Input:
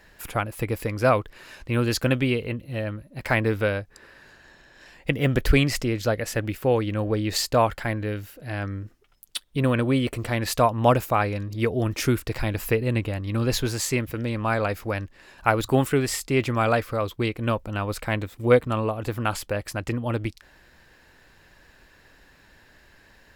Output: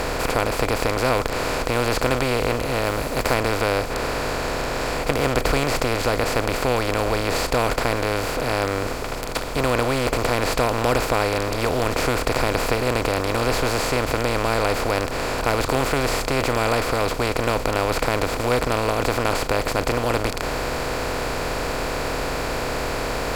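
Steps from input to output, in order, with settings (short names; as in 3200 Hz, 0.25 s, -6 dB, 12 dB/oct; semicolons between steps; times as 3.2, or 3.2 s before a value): per-bin compression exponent 0.2; 2.84–3.34 high shelf 9200 Hz +6 dB; gain -8.5 dB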